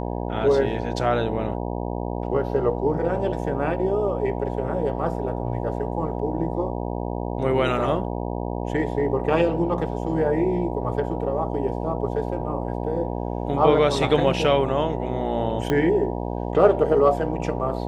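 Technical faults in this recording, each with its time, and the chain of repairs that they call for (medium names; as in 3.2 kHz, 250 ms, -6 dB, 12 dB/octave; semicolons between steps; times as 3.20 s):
buzz 60 Hz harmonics 16 -28 dBFS
15.70 s: pop -10 dBFS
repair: de-click; de-hum 60 Hz, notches 16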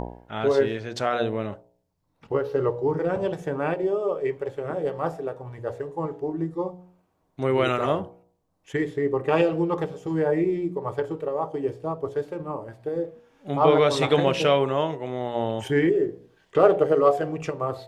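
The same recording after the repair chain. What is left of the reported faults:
15.70 s: pop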